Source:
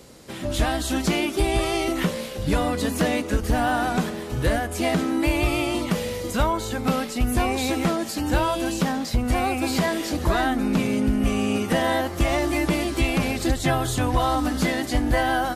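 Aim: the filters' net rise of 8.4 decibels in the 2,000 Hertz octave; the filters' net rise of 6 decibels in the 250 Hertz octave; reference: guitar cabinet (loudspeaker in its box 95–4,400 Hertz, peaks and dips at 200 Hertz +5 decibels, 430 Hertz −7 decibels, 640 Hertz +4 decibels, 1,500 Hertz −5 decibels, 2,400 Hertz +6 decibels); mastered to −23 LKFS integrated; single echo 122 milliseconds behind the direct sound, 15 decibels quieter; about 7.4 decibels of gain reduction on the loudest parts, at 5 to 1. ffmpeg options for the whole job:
ffmpeg -i in.wav -af "equalizer=frequency=250:width_type=o:gain=6,equalizer=frequency=2000:width_type=o:gain=8.5,acompressor=threshold=-22dB:ratio=5,highpass=95,equalizer=frequency=200:width_type=q:width=4:gain=5,equalizer=frequency=430:width_type=q:width=4:gain=-7,equalizer=frequency=640:width_type=q:width=4:gain=4,equalizer=frequency=1500:width_type=q:width=4:gain=-5,equalizer=frequency=2400:width_type=q:width=4:gain=6,lowpass=frequency=4400:width=0.5412,lowpass=frequency=4400:width=1.3066,aecho=1:1:122:0.178,volume=1.5dB" out.wav

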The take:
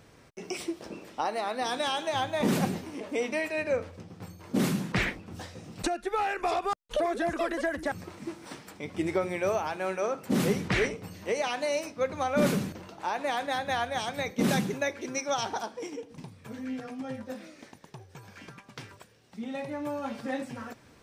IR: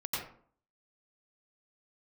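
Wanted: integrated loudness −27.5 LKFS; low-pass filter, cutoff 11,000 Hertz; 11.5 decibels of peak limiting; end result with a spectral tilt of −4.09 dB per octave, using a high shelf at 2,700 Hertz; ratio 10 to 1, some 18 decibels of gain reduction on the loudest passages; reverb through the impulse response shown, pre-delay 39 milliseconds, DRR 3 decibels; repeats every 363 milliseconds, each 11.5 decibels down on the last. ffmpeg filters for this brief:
-filter_complex "[0:a]lowpass=11000,highshelf=frequency=2700:gain=7,acompressor=threshold=-40dB:ratio=10,alimiter=level_in=10.5dB:limit=-24dB:level=0:latency=1,volume=-10.5dB,aecho=1:1:363|726|1089:0.266|0.0718|0.0194,asplit=2[link_01][link_02];[1:a]atrim=start_sample=2205,adelay=39[link_03];[link_02][link_03]afir=irnorm=-1:irlink=0,volume=-7.5dB[link_04];[link_01][link_04]amix=inputs=2:normalize=0,volume=15.5dB"

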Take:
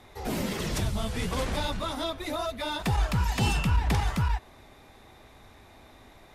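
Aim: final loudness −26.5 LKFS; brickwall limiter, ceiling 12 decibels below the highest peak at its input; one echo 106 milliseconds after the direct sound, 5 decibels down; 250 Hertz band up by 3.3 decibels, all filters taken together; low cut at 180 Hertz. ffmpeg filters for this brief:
ffmpeg -i in.wav -af "highpass=180,equalizer=frequency=250:width_type=o:gain=6.5,alimiter=level_in=2.5dB:limit=-24dB:level=0:latency=1,volume=-2.5dB,aecho=1:1:106:0.562,volume=7.5dB" out.wav

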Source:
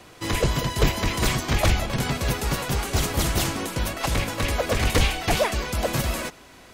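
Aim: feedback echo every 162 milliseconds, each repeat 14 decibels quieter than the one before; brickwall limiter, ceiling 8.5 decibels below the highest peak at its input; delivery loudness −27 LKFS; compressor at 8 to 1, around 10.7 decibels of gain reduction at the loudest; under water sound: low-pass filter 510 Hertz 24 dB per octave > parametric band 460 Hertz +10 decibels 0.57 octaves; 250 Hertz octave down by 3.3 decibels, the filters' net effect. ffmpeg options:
ffmpeg -i in.wav -af "equalizer=frequency=250:width_type=o:gain=-7,acompressor=threshold=-26dB:ratio=8,alimiter=limit=-23.5dB:level=0:latency=1,lowpass=frequency=510:width=0.5412,lowpass=frequency=510:width=1.3066,equalizer=frequency=460:width_type=o:width=0.57:gain=10,aecho=1:1:162|324:0.2|0.0399,volume=8.5dB" out.wav

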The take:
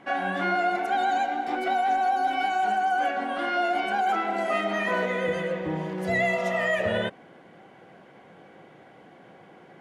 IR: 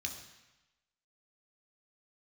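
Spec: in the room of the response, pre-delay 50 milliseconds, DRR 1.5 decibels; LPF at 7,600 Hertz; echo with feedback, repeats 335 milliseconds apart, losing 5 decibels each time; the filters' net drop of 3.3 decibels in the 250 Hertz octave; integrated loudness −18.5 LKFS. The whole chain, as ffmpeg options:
-filter_complex "[0:a]lowpass=7600,equalizer=frequency=250:width_type=o:gain=-5,aecho=1:1:335|670|1005|1340|1675|2010|2345:0.562|0.315|0.176|0.0988|0.0553|0.031|0.0173,asplit=2[link_01][link_02];[1:a]atrim=start_sample=2205,adelay=50[link_03];[link_02][link_03]afir=irnorm=-1:irlink=0,volume=-1.5dB[link_04];[link_01][link_04]amix=inputs=2:normalize=0,volume=4.5dB"

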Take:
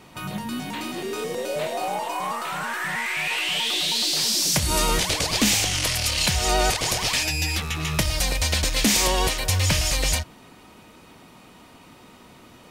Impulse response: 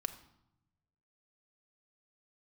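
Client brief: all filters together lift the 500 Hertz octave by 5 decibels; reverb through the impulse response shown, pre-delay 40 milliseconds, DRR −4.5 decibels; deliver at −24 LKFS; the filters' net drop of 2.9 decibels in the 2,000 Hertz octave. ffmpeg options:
-filter_complex "[0:a]equalizer=frequency=500:width_type=o:gain=6.5,equalizer=frequency=2000:width_type=o:gain=-4,asplit=2[link_01][link_02];[1:a]atrim=start_sample=2205,adelay=40[link_03];[link_02][link_03]afir=irnorm=-1:irlink=0,volume=4.5dB[link_04];[link_01][link_04]amix=inputs=2:normalize=0,volume=-7.5dB"

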